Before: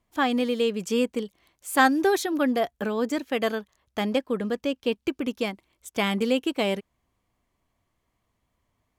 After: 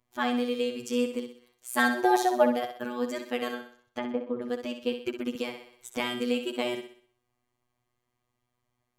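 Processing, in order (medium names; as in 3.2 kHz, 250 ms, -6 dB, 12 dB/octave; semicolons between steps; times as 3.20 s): 1.89–2.51 s: high-order bell 740 Hz +14 dB 1.1 oct; 3.54–4.42 s: low-pass that closes with the level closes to 850 Hz, closed at -21.5 dBFS; robot voice 122 Hz; thinning echo 63 ms, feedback 44%, high-pass 180 Hz, level -8 dB; 5.35–6.00 s: three bands compressed up and down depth 70%; trim -2.5 dB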